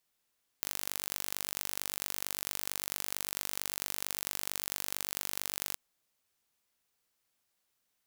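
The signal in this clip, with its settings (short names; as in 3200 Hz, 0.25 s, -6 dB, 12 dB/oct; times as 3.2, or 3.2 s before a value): pulse train 48.9/s, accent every 2, -6.5 dBFS 5.13 s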